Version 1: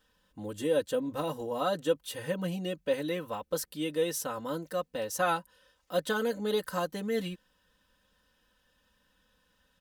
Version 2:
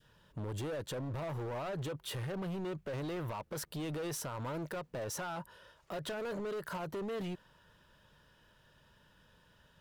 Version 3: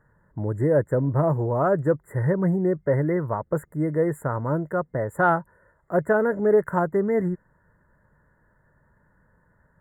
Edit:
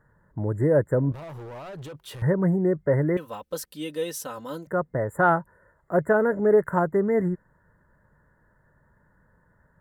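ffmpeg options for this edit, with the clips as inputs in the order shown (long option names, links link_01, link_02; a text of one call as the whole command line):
ffmpeg -i take0.wav -i take1.wav -i take2.wav -filter_complex "[2:a]asplit=3[link_01][link_02][link_03];[link_01]atrim=end=1.122[link_04];[1:a]atrim=start=1.118:end=2.222[link_05];[link_02]atrim=start=2.218:end=3.172[link_06];[0:a]atrim=start=3.168:end=4.672[link_07];[link_03]atrim=start=4.668[link_08];[link_04][link_05]acrossfade=duration=0.004:curve1=hsin:curve2=hsin[link_09];[link_09][link_06]acrossfade=duration=0.004:curve1=hsin:curve2=hsin[link_10];[link_10][link_07]acrossfade=duration=0.004:curve1=hsin:curve2=hsin[link_11];[link_11][link_08]acrossfade=duration=0.004:curve1=hsin:curve2=hsin" out.wav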